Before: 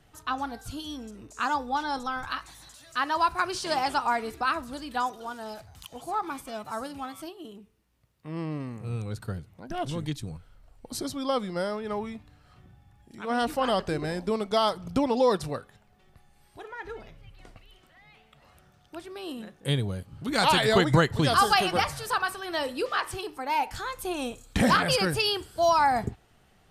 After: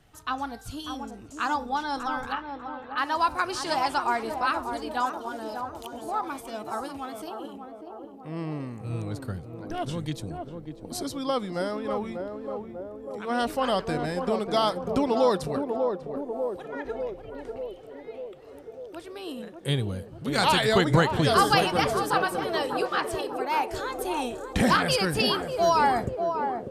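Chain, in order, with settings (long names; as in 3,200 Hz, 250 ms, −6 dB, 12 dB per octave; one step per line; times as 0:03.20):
0:02.32–0:02.98: Butterworth low-pass 3,200 Hz 36 dB per octave
feedback echo with a band-pass in the loop 594 ms, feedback 73%, band-pass 440 Hz, level −4 dB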